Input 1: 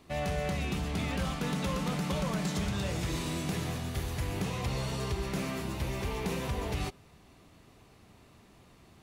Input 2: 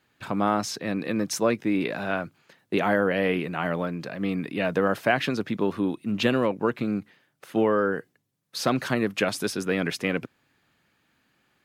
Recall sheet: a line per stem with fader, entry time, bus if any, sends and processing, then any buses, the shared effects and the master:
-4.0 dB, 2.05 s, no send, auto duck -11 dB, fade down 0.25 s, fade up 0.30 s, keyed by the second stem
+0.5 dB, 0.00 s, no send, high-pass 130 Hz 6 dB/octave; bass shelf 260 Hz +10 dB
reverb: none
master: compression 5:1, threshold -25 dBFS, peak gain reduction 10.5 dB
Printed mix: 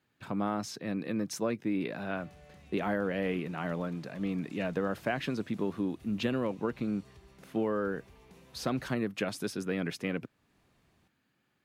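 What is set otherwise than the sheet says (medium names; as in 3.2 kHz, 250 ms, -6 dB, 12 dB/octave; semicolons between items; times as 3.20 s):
stem 1 -4.0 dB -> -12.0 dB; stem 2 +0.5 dB -> -9.5 dB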